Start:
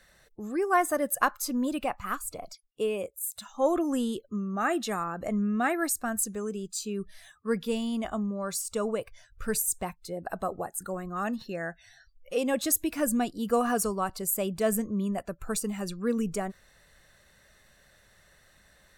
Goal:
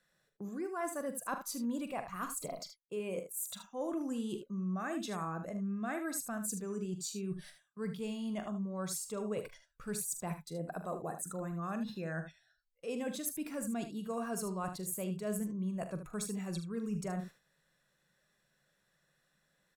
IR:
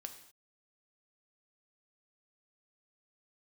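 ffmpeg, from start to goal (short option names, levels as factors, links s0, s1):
-af "agate=range=0.158:threshold=0.00447:ratio=16:detection=peak,lowshelf=f=120:t=q:w=3:g=-8.5,areverse,acompressor=threshold=0.0141:ratio=5,areverse,aecho=1:1:41|73:0.266|0.316,asetrate=42336,aresample=44100"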